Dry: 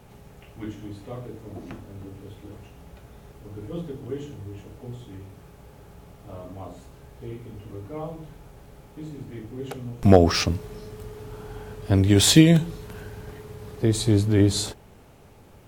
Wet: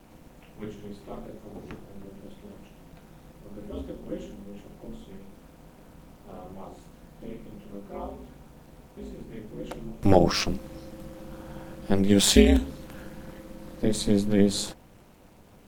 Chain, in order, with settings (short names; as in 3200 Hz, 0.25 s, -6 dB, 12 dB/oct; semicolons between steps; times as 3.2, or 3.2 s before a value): crackle 160/s -51 dBFS; ring modulator 100 Hz; requantised 12-bit, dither none